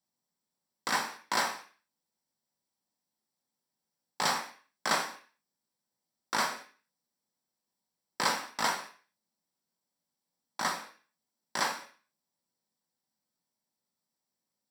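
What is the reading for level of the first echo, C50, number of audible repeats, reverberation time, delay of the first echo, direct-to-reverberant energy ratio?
no echo audible, 11.5 dB, no echo audible, 0.45 s, no echo audible, 2.5 dB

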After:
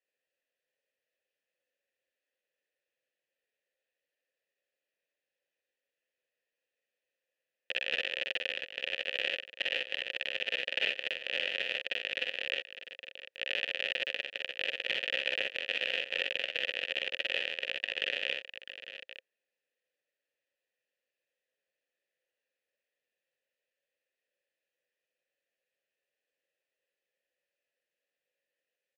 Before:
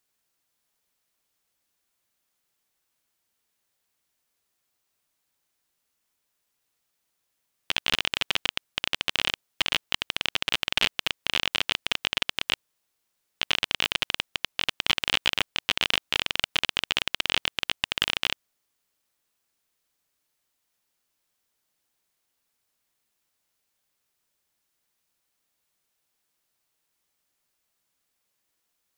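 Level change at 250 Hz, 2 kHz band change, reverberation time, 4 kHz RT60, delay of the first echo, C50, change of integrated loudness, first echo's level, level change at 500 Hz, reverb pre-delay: −13.0 dB, −3.5 dB, no reverb audible, no reverb audible, 47 ms, no reverb audible, −6.5 dB, −4.5 dB, +0.5 dB, no reverb audible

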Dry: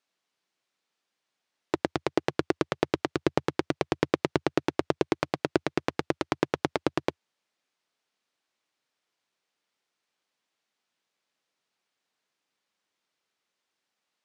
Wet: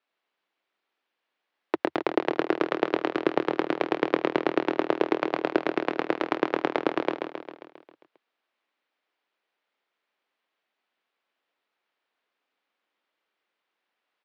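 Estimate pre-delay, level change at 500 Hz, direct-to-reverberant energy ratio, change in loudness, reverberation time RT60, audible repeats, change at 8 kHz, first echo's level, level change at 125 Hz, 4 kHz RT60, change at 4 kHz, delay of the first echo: no reverb audible, +3.0 dB, no reverb audible, +2.5 dB, no reverb audible, 7, below −10 dB, −6.0 dB, −9.0 dB, no reverb audible, −1.0 dB, 134 ms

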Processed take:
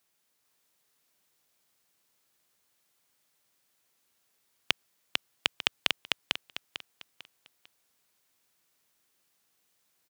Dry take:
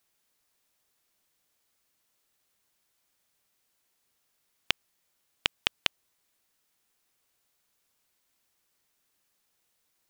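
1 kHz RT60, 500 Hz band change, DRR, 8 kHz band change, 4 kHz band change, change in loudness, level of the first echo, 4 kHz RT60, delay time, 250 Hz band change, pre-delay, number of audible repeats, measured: no reverb audible, +2.0 dB, no reverb audible, +2.0 dB, +2.0 dB, −0.5 dB, −3.0 dB, no reverb audible, 448 ms, +2.0 dB, no reverb audible, 4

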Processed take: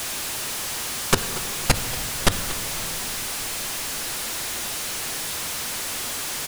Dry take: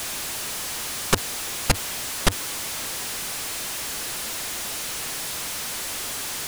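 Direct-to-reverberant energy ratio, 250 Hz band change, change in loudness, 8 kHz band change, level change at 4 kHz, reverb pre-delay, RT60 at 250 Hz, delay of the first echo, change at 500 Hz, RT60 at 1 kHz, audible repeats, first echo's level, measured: 8.5 dB, +2.0 dB, +1.5 dB, +1.0 dB, +1.5 dB, 7 ms, 4.4 s, 233 ms, +1.5 dB, 2.4 s, 1, −16.5 dB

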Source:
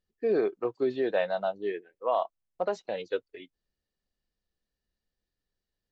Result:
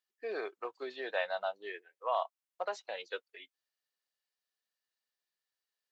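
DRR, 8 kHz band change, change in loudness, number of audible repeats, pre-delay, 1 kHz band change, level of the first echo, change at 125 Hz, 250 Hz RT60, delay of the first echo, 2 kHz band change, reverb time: no reverb audible, can't be measured, −8.0 dB, no echo audible, no reverb audible, −3.5 dB, no echo audible, can't be measured, no reverb audible, no echo audible, −0.5 dB, no reverb audible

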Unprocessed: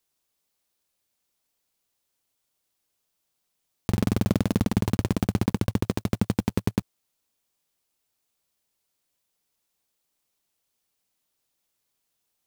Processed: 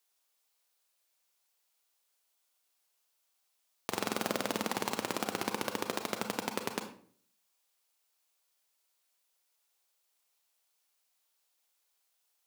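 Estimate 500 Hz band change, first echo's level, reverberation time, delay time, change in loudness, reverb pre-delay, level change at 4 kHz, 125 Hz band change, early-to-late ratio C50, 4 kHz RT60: −4.5 dB, no echo audible, 0.50 s, no echo audible, −9.0 dB, 31 ms, +1.0 dB, −23.5 dB, 8.5 dB, 0.35 s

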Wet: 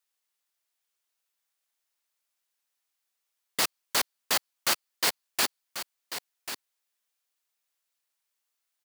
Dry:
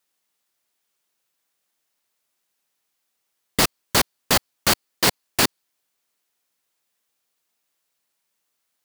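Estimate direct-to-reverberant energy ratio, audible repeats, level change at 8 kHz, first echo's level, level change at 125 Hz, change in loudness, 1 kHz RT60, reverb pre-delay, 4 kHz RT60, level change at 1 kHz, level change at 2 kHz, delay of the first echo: no reverb audible, 1, −6.0 dB, −10.5 dB, −21.5 dB, −8.5 dB, no reverb audible, no reverb audible, no reverb audible, −8.0 dB, −7.0 dB, 1,090 ms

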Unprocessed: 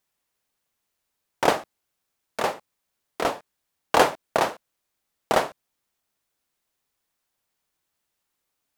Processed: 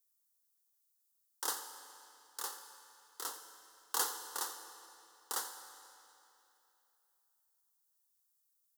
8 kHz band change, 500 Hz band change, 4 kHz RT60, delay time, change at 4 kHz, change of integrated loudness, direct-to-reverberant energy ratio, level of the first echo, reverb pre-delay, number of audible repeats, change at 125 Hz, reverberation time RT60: −1.0 dB, −28.0 dB, 2.7 s, 86 ms, −10.5 dB, −15.0 dB, 6.5 dB, −15.0 dB, 9 ms, 1, below −35 dB, 2.9 s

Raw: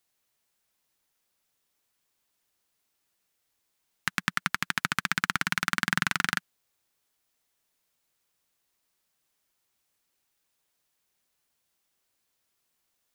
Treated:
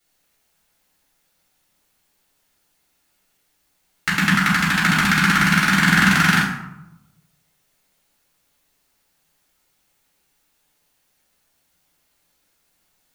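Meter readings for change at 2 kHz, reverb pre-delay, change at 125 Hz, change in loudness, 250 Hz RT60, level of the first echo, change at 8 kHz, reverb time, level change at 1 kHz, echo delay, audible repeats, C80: +12.0 dB, 3 ms, +18.5 dB, +12.0 dB, 1.1 s, no echo audible, +9.5 dB, 0.90 s, +11.5 dB, no echo audible, no echo audible, 6.0 dB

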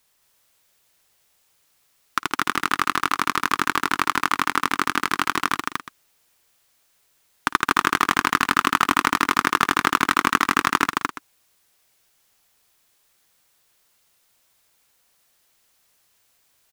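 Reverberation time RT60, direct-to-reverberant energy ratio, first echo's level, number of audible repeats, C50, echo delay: no reverb audible, no reverb audible, −19.0 dB, 3, no reverb audible, 54 ms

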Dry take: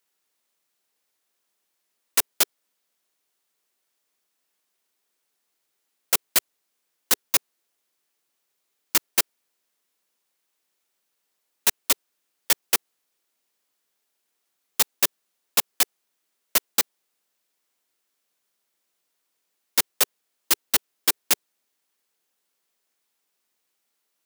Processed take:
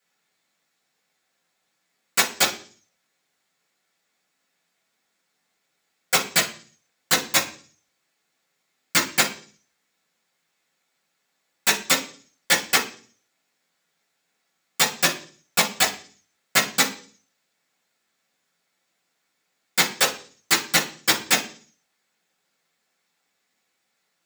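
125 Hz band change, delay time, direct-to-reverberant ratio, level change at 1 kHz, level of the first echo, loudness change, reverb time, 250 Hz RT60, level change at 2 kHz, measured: +12.5 dB, no echo audible, −11.0 dB, +7.0 dB, no echo audible, +2.0 dB, 0.45 s, 0.60 s, +9.0 dB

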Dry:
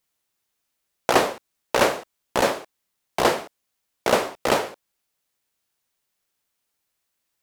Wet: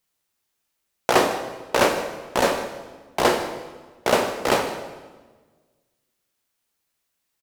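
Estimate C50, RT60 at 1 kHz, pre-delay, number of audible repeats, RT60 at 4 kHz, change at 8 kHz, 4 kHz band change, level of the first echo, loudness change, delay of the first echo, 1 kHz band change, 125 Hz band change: 8.5 dB, 1.3 s, 9 ms, 1, 1.1 s, +1.0 dB, +1.0 dB, −17.0 dB, 0.0 dB, 154 ms, +1.0 dB, +1.5 dB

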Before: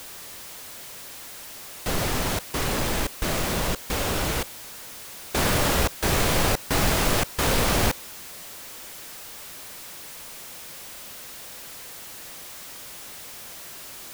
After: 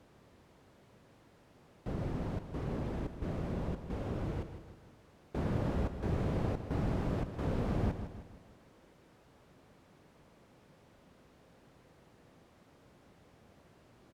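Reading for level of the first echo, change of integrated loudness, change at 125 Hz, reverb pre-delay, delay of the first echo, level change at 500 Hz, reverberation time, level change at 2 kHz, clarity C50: −10.0 dB, −9.5 dB, −6.0 dB, no reverb audible, 156 ms, −11.5 dB, no reverb audible, −22.5 dB, no reverb audible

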